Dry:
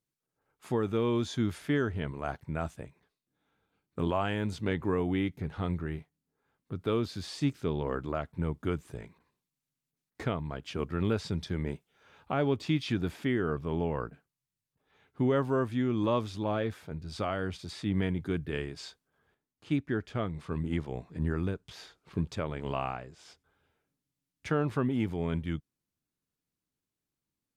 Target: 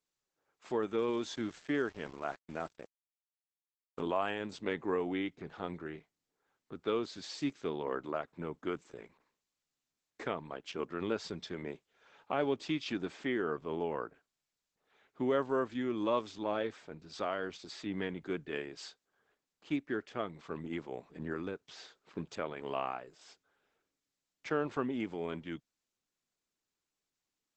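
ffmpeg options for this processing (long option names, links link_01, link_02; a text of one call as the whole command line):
ffmpeg -i in.wav -filter_complex "[0:a]highpass=290,asettb=1/sr,asplit=3[link_01][link_02][link_03];[link_01]atrim=end=0.984[link_04];[link_02]atrim=start=0.98:end=4.01,asetpts=PTS-STARTPTS,afade=type=in:duration=0.004:curve=qsin,afade=type=out:start_time=3.026:duration=0.004:curve=qsin,aeval=exprs='val(0)*gte(abs(val(0)),0.00473)':channel_layout=same[link_05];[link_03]atrim=start=4.006[link_06];[link_04][link_05]acrossfade=duration=0.004:curve1=hsin:curve2=qsin[link_07];[link_07][link_06]acrossfade=duration=0.004:curve1=qsin:curve2=hsin,volume=-1.5dB" -ar 48000 -c:a libopus -b:a 12k out.opus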